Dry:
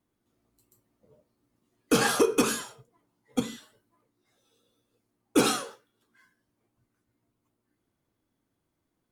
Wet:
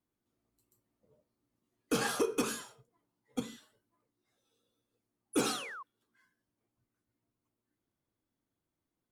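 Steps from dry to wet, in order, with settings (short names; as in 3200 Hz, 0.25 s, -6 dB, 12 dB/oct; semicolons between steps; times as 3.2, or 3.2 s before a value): painted sound fall, 5.33–5.83, 1000–11000 Hz -36 dBFS; gain -8.5 dB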